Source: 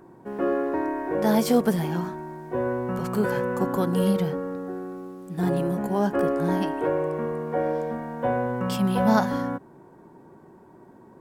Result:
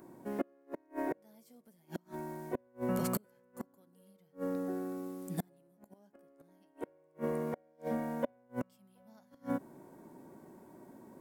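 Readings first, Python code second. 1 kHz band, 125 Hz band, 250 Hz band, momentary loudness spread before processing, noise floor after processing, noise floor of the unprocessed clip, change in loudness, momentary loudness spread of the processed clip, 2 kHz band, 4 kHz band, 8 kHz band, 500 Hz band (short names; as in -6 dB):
-17.0 dB, -16.5 dB, -14.5 dB, 11 LU, -68 dBFS, -51 dBFS, -14.5 dB, 19 LU, -17.0 dB, -18.5 dB, -10.0 dB, -15.5 dB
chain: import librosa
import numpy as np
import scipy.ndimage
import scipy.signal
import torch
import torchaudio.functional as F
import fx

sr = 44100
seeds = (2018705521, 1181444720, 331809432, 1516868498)

y = fx.gate_flip(x, sr, shuts_db=-18.0, range_db=-37)
y = scipy.signal.lfilter([1.0, -0.8], [1.0], y)
y = fx.small_body(y, sr, hz=(250.0, 580.0, 2100.0), ring_ms=20, db=8)
y = F.gain(torch.from_numpy(y), 4.5).numpy()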